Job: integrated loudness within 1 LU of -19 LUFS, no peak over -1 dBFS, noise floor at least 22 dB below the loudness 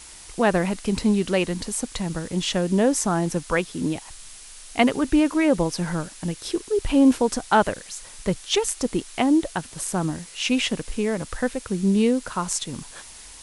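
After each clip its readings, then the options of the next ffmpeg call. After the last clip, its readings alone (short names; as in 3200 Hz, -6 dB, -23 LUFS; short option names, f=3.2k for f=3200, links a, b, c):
noise floor -43 dBFS; noise floor target -46 dBFS; loudness -23.5 LUFS; peak -4.0 dBFS; loudness target -19.0 LUFS
-> -af "afftdn=nr=6:nf=-43"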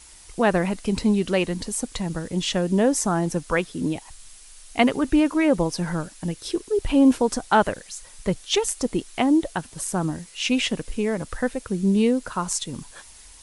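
noise floor -47 dBFS; loudness -23.5 LUFS; peak -4.0 dBFS; loudness target -19.0 LUFS
-> -af "volume=4.5dB,alimiter=limit=-1dB:level=0:latency=1"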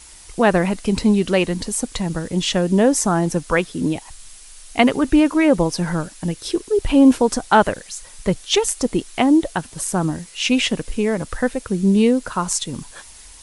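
loudness -19.0 LUFS; peak -1.0 dBFS; noise floor -43 dBFS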